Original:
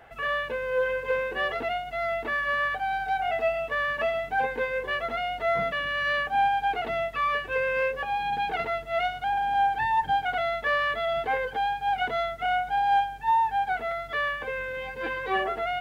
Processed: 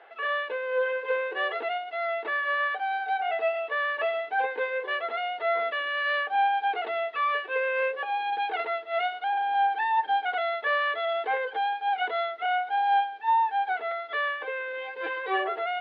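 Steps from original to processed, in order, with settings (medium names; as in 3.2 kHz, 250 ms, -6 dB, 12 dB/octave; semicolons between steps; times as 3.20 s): elliptic band-pass 370–3900 Hz, stop band 50 dB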